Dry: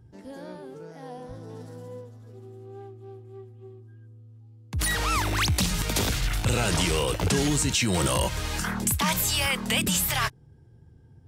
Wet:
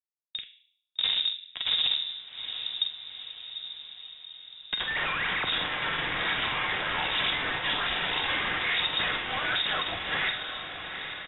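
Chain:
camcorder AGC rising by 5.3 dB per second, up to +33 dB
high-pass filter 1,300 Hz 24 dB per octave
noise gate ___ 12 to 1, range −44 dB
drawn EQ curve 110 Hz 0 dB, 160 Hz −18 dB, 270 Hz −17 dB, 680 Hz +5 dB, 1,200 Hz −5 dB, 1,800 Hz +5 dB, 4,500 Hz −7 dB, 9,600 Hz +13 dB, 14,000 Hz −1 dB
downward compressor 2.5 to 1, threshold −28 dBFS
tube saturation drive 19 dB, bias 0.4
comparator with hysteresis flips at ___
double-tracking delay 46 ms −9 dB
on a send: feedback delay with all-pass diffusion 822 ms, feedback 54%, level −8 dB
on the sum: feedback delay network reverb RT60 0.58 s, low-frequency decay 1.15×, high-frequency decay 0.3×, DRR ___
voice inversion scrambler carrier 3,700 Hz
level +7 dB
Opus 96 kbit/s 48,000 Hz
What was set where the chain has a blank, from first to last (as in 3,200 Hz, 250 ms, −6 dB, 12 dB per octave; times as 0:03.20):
−53 dBFS, −40 dBFS, 5 dB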